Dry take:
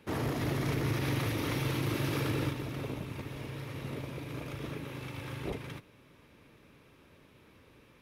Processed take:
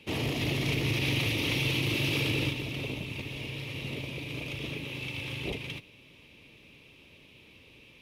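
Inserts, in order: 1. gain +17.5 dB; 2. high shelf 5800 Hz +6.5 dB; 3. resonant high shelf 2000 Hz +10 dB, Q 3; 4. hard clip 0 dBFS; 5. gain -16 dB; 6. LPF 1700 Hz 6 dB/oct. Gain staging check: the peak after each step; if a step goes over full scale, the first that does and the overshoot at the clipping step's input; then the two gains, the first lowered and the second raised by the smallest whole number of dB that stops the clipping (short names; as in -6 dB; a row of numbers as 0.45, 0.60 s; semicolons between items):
-3.5, -3.0, +4.5, 0.0, -16.0, -18.0 dBFS; step 3, 4.5 dB; step 1 +12.5 dB, step 5 -11 dB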